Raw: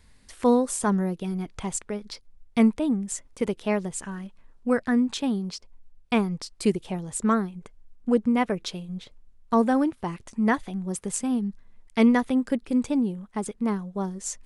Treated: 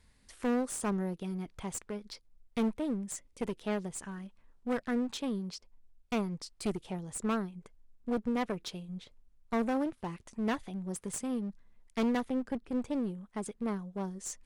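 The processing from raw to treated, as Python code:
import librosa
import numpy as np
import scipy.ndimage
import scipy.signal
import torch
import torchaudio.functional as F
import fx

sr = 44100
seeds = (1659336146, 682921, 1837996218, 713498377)

y = fx.spec_box(x, sr, start_s=3.2, length_s=0.23, low_hz=600.0, high_hz=1900.0, gain_db=-6)
y = fx.high_shelf(y, sr, hz=2600.0, db=-9.0, at=(12.28, 12.91))
y = fx.clip_asym(y, sr, top_db=-29.0, bottom_db=-14.5)
y = y * 10.0 ** (-7.0 / 20.0)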